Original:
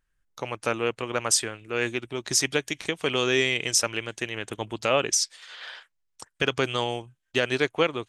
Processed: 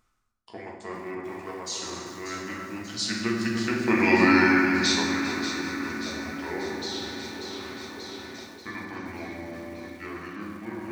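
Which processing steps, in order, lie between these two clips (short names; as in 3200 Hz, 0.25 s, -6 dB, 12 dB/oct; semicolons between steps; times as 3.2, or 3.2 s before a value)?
Doppler pass-by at 3.05, 20 m/s, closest 5.7 m; on a send: echo with dull and thin repeats by turns 0.217 s, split 2400 Hz, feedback 74%, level -7.5 dB; on the sum: FDN reverb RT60 1.6 s, low-frequency decay 1.35×, high-frequency decay 0.5×, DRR -4 dB; speed mistake 45 rpm record played at 33 rpm; reverse; upward compressor, threshold -28 dBFS; reverse; low shelf 97 Hz -7 dB; lo-fi delay 0.398 s, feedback 55%, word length 7-bit, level -14 dB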